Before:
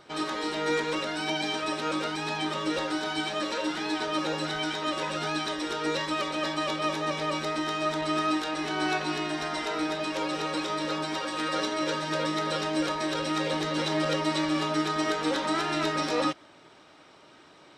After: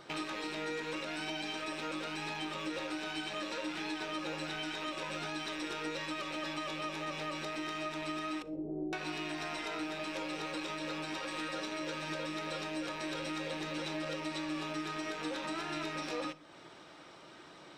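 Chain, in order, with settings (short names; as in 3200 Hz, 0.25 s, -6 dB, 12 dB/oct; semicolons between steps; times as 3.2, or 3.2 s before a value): rattling part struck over -46 dBFS, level -26 dBFS; 8.42–8.93 steep low-pass 570 Hz 36 dB/oct; compressor 5:1, threshold -37 dBFS, peak gain reduction 13.5 dB; reverb RT60 0.65 s, pre-delay 6 ms, DRR 12 dB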